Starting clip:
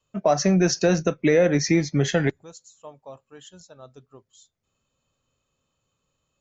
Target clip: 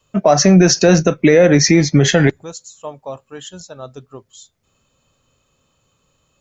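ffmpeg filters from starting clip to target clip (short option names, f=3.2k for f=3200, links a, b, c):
-af "alimiter=level_in=13.5dB:limit=-1dB:release=50:level=0:latency=1,volume=-1dB"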